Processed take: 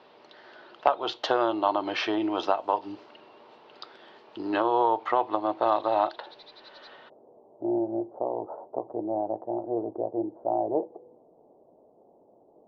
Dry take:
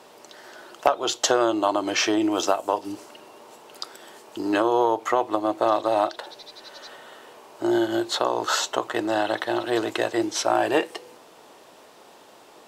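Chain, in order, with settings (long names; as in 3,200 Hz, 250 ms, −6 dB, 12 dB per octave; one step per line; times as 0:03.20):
dynamic equaliser 890 Hz, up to +6 dB, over −35 dBFS, Q 2.1
Butterworth low-pass 4,400 Hz 36 dB per octave, from 0:07.08 740 Hz
level −5.5 dB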